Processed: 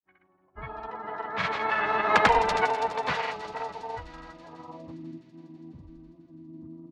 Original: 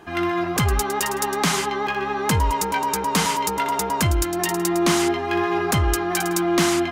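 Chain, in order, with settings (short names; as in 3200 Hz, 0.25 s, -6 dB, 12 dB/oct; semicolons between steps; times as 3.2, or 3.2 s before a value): Doppler pass-by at 2.24, 22 m/s, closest 6 m; spectral noise reduction 21 dB; low-pass opened by the level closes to 570 Hz, open at -24.5 dBFS; band shelf 1500 Hz +12 dB; notches 50/100 Hz; grains, pitch spread up and down by 0 st; low-pass sweep 3900 Hz -> 330 Hz, 4.4–4.97; harmoniser -12 st -5 dB, -5 st -8 dB, -3 st -11 dB; on a send: thin delay 0.165 s, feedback 80%, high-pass 4300 Hz, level -9 dB; on the sum: gain -6.5 dB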